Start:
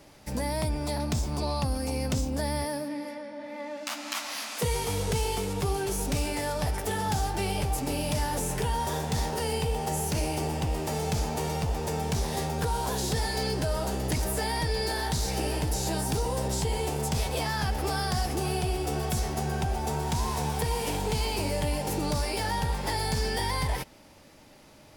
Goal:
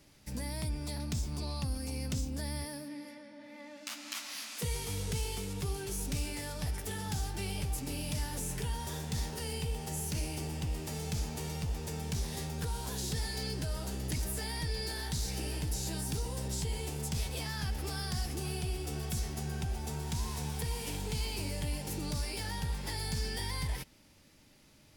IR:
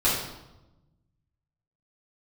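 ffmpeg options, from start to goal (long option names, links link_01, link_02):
-af "equalizer=frequency=720:width=0.66:gain=-10,volume=-5dB"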